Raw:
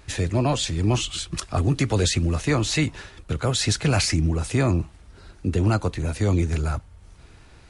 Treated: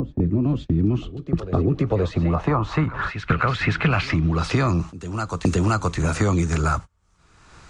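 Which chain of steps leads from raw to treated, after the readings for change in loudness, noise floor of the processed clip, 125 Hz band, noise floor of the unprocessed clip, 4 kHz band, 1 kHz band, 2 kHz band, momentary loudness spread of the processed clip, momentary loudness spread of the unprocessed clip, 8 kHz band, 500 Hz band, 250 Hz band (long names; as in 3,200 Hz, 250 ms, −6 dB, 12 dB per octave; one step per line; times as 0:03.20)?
+1.0 dB, −58 dBFS, +1.0 dB, −49 dBFS, −7.5 dB, +5.5 dB, +4.0 dB, 7 LU, 7 LU, −9.5 dB, +1.5 dB, +3.0 dB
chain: fade in at the beginning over 0.78 s
parametric band 170 Hz +6.5 dB 0.26 octaves
low-pass filter sweep 290 Hz → 7,300 Hz, 0:01.22–0:05.00
parametric band 1,200 Hz +11 dB 0.73 octaves
in parallel at +2 dB: downward compressor 6 to 1, threshold −27 dBFS, peak gain reduction 14 dB
on the sum: noise gate −27 dBFS, range −32 dB
on a send: backwards echo 523 ms −20 dB
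on the sum: multiband upward and downward compressor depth 100%
level −4 dB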